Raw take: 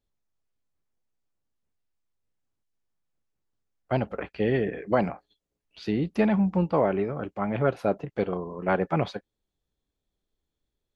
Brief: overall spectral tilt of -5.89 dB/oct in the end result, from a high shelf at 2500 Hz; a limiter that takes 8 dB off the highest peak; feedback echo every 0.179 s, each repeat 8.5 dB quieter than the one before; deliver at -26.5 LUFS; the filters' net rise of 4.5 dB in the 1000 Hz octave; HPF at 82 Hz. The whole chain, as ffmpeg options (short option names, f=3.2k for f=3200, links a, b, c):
-af "highpass=82,equalizer=f=1k:t=o:g=5,highshelf=f=2.5k:g=6.5,alimiter=limit=-14.5dB:level=0:latency=1,aecho=1:1:179|358|537|716:0.376|0.143|0.0543|0.0206,volume=0.5dB"